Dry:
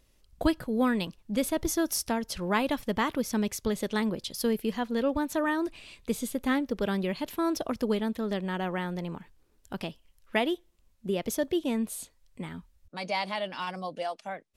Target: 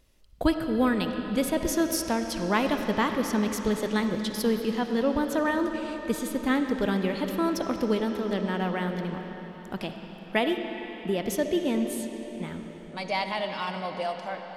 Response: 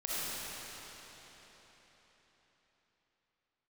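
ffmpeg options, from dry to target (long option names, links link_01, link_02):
-filter_complex "[0:a]asplit=2[link_01][link_02];[1:a]atrim=start_sample=2205,lowpass=5800[link_03];[link_02][link_03]afir=irnorm=-1:irlink=0,volume=-9.5dB[link_04];[link_01][link_04]amix=inputs=2:normalize=0"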